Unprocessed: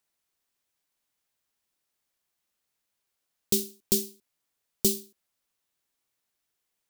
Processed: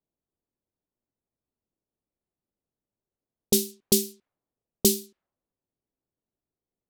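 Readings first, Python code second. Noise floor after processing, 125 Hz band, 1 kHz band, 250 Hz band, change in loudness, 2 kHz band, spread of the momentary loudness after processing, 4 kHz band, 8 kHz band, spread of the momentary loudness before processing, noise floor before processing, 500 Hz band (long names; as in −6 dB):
below −85 dBFS, +4.0 dB, can't be measured, +5.0 dB, +3.0 dB, +4.5 dB, 7 LU, +4.5 dB, +4.0 dB, 7 LU, −82 dBFS, +5.0 dB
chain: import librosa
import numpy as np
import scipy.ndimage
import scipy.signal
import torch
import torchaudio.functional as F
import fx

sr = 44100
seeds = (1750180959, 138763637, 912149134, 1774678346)

y = fx.env_lowpass(x, sr, base_hz=430.0, full_db=-27.0)
y = y * librosa.db_to_amplitude(5.0)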